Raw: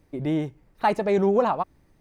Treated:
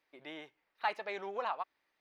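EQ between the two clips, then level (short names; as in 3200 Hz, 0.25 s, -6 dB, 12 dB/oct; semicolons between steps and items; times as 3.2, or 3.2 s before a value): air absorption 350 m; differentiator; bell 110 Hz -14.5 dB 3 oct; +9.5 dB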